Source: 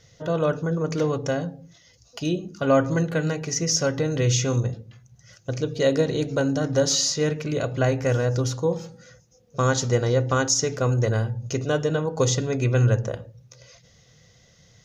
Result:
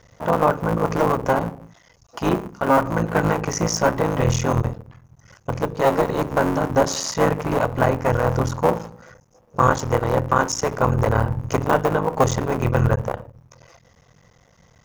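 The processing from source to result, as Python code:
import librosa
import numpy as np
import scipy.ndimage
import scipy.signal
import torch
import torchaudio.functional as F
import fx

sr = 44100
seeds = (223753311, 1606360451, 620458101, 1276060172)

y = fx.cycle_switch(x, sr, every=3, mode='muted')
y = fx.graphic_eq_10(y, sr, hz=(1000, 4000, 8000), db=(10, -8, -4))
y = fx.rider(y, sr, range_db=10, speed_s=0.5)
y = y * librosa.db_to_amplitude(3.0)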